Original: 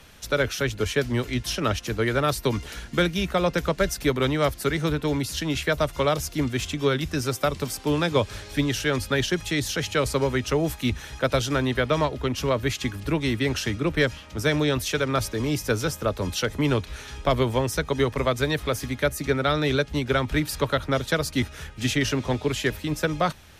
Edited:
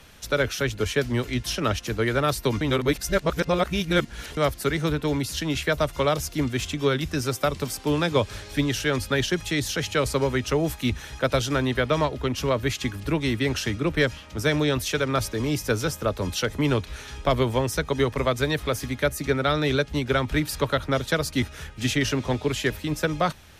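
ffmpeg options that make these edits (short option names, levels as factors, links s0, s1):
-filter_complex "[0:a]asplit=3[s0][s1][s2];[s0]atrim=end=2.612[s3];[s1]atrim=start=2.608:end=4.372,asetpts=PTS-STARTPTS,areverse[s4];[s2]atrim=start=4.368[s5];[s3][s4]acrossfade=d=0.004:c1=hsin:c2=hsin[s6];[s6][s5]acrossfade=d=0.004:c1=hsin:c2=hsin"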